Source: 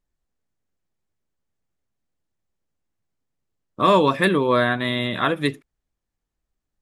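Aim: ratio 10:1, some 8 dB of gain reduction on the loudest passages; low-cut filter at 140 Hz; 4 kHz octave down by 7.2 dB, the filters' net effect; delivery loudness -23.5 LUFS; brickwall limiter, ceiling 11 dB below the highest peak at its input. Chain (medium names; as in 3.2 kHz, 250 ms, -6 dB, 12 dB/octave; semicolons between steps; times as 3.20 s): high-pass 140 Hz; peaking EQ 4 kHz -8.5 dB; compression 10:1, threshold -20 dBFS; trim +7 dB; peak limiter -13.5 dBFS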